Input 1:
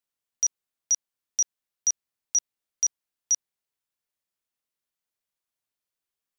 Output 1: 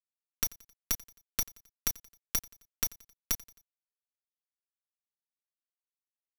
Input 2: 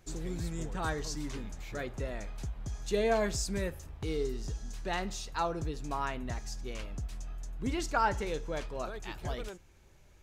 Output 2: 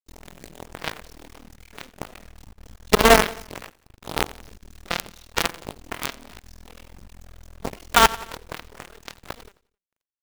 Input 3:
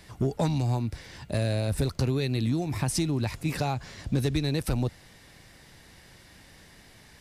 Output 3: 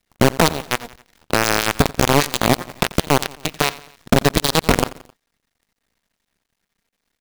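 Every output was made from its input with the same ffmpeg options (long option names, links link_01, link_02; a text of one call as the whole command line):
ffmpeg -i in.wav -filter_complex "[0:a]acrossover=split=5200[link_01][link_02];[link_02]acompressor=threshold=-57dB:ratio=4:attack=1:release=60[link_03];[link_01][link_03]amix=inputs=2:normalize=0,highshelf=frequency=11000:gain=-9.5,bandreject=frequency=4800:width=13,aecho=1:1:4.3:0.73,asplit=2[link_04][link_05];[link_05]acompressor=threshold=-35dB:ratio=10,volume=2dB[link_06];[link_04][link_06]amix=inputs=2:normalize=0,acrusher=bits=4:dc=4:mix=0:aa=0.000001,aeval=exprs='sgn(val(0))*max(abs(val(0))-0.01,0)':channel_layout=same,aeval=exprs='0.299*(cos(1*acos(clip(val(0)/0.299,-1,1)))-cos(1*PI/2))+0.0106*(cos(3*acos(clip(val(0)/0.299,-1,1)))-cos(3*PI/2))+0.0075*(cos(4*acos(clip(val(0)/0.299,-1,1)))-cos(4*PI/2))+0.0376*(cos(7*acos(clip(val(0)/0.299,-1,1)))-cos(7*PI/2))+0.015*(cos(8*acos(clip(val(0)/0.299,-1,1)))-cos(8*PI/2))':channel_layout=same,asplit=2[link_07][link_08];[link_08]aecho=0:1:88|176|264:0.0794|0.0397|0.0199[link_09];[link_07][link_09]amix=inputs=2:normalize=0,alimiter=level_in=14dB:limit=-1dB:release=50:level=0:latency=1,volume=-1dB" out.wav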